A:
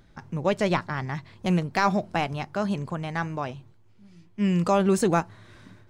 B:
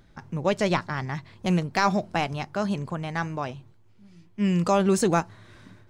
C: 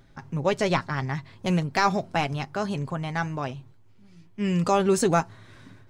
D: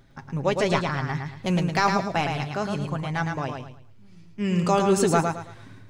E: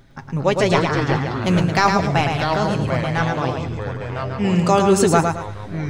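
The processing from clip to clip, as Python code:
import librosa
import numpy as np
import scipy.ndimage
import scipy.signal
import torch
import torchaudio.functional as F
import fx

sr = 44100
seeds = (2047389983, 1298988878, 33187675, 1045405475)

y1 = fx.dynamic_eq(x, sr, hz=5800.0, q=0.97, threshold_db=-45.0, ratio=4.0, max_db=4)
y2 = y1 + 0.37 * np.pad(y1, (int(7.4 * sr / 1000.0), 0))[:len(y1)]
y3 = fx.echo_feedback(y2, sr, ms=110, feedback_pct=30, wet_db=-5)
y4 = fx.echo_pitch(y3, sr, ms=185, semitones=-4, count=3, db_per_echo=-6.0)
y4 = y4 * librosa.db_to_amplitude(5.5)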